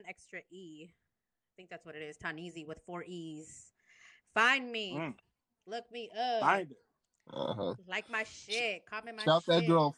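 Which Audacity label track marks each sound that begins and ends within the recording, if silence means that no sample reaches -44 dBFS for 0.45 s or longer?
1.590000	3.600000	sound
4.360000	5.120000	sound
5.690000	6.720000	sound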